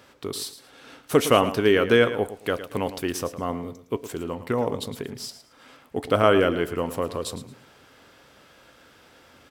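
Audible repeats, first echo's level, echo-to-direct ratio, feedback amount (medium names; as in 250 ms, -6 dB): 2, -13.0 dB, -12.5 dB, 24%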